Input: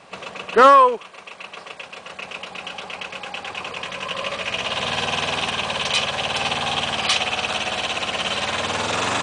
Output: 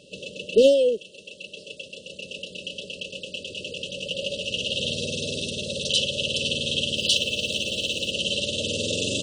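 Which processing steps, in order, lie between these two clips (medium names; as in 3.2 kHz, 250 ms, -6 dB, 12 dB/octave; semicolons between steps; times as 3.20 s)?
4.93–5.89 s: peaking EQ 3 kHz -11.5 dB 0.24 oct; 6.96–8.11 s: modulation noise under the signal 32 dB; brick-wall FIR band-stop 620–2600 Hz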